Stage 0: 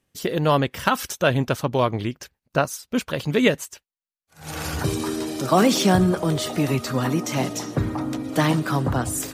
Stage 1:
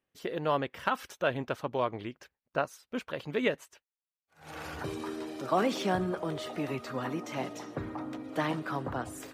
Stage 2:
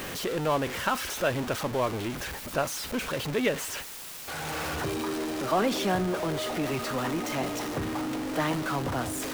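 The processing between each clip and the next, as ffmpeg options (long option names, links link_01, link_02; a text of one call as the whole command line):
ffmpeg -i in.wav -af "bass=frequency=250:gain=-9,treble=frequency=4000:gain=-12,volume=-8.5dB" out.wav
ffmpeg -i in.wav -af "aeval=exprs='val(0)+0.5*0.0335*sgn(val(0))':channel_layout=same" out.wav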